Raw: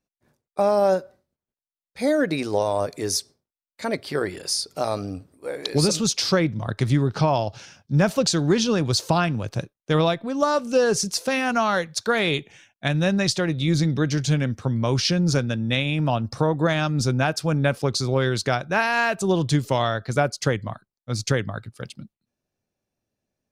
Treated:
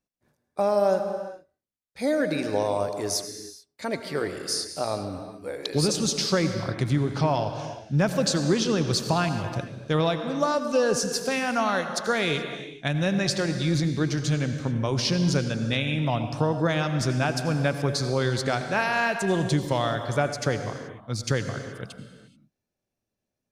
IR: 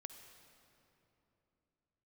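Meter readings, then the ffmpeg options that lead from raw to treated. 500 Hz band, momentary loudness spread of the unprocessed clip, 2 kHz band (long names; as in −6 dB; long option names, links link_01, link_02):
−2.5 dB, 9 LU, −2.5 dB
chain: -filter_complex "[1:a]atrim=start_sample=2205,afade=type=out:start_time=0.33:duration=0.01,atrim=end_sample=14994,asetrate=28224,aresample=44100[link_01];[0:a][link_01]afir=irnorm=-1:irlink=0"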